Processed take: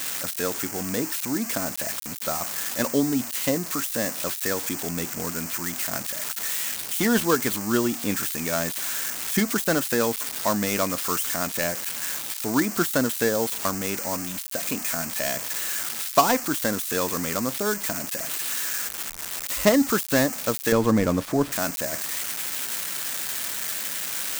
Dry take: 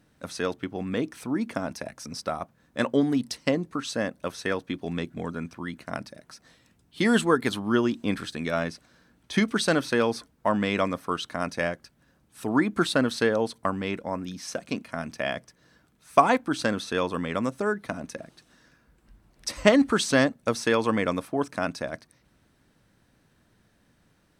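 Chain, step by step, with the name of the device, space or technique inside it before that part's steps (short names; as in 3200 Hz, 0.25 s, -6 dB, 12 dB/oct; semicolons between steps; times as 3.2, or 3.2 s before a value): budget class-D amplifier (switching dead time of 0.14 ms; switching spikes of -12 dBFS); 20.72–21.52 tilt -3 dB/oct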